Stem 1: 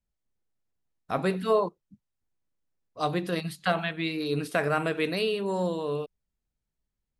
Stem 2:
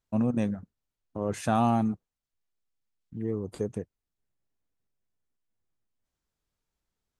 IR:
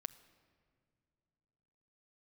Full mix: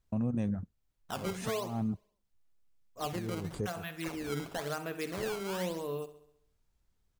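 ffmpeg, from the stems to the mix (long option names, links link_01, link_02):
-filter_complex "[0:a]acrusher=samples=14:mix=1:aa=0.000001:lfo=1:lforange=22.4:lforate=0.97,volume=-6.5dB,asplit=3[link_01][link_02][link_03];[link_02]volume=-15.5dB[link_04];[1:a]lowshelf=frequency=140:gain=11.5,alimiter=limit=-23dB:level=0:latency=1:release=58,volume=2dB[link_05];[link_03]apad=whole_len=317461[link_06];[link_05][link_06]sidechaincompress=threshold=-44dB:ratio=8:attack=50:release=154[link_07];[link_04]aecho=0:1:67|134|201|268|335|402|469|536:1|0.55|0.303|0.166|0.0915|0.0503|0.0277|0.0152[link_08];[link_01][link_07][link_08]amix=inputs=3:normalize=0,alimiter=level_in=1dB:limit=-24dB:level=0:latency=1:release=449,volume=-1dB"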